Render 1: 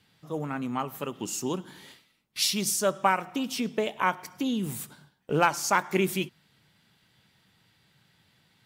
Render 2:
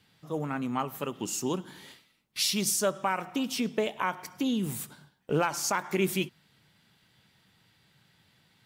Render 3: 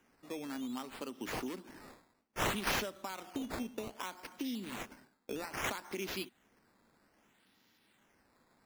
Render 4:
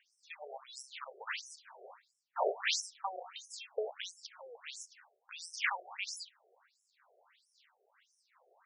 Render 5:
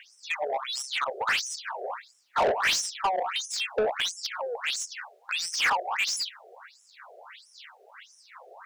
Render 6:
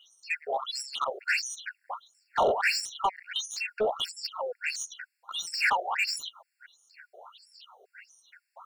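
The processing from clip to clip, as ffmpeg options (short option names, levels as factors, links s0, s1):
-af "alimiter=limit=0.158:level=0:latency=1:release=76"
-filter_complex "[0:a]lowshelf=f=190:t=q:w=3:g=-8.5,acrossover=split=120|3000[s0][s1][s2];[s1]acompressor=threshold=0.0178:ratio=6[s3];[s0][s3][s2]amix=inputs=3:normalize=0,acrusher=samples=10:mix=1:aa=0.000001:lfo=1:lforange=10:lforate=0.62,volume=0.596"
-af "afftfilt=real='re*between(b*sr/1024,520*pow(7500/520,0.5+0.5*sin(2*PI*1.5*pts/sr))/1.41,520*pow(7500/520,0.5+0.5*sin(2*PI*1.5*pts/sr))*1.41)':imag='im*between(b*sr/1024,520*pow(7500/520,0.5+0.5*sin(2*PI*1.5*pts/sr))/1.41,520*pow(7500/520,0.5+0.5*sin(2*PI*1.5*pts/sr))*1.41)':win_size=1024:overlap=0.75,volume=2.51"
-filter_complex "[0:a]asplit=2[s0][s1];[s1]alimiter=level_in=1.41:limit=0.0631:level=0:latency=1:release=176,volume=0.708,volume=0.944[s2];[s0][s2]amix=inputs=2:normalize=0,asplit=2[s3][s4];[s4]highpass=f=720:p=1,volume=14.1,asoftclip=type=tanh:threshold=0.15[s5];[s3][s5]amix=inputs=2:normalize=0,lowpass=f=4200:p=1,volume=0.501"
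-af "afftfilt=real='re*gt(sin(2*PI*2.1*pts/sr)*(1-2*mod(floor(b*sr/1024/1400),2)),0)':imag='im*gt(sin(2*PI*2.1*pts/sr)*(1-2*mod(floor(b*sr/1024/1400),2)),0)':win_size=1024:overlap=0.75"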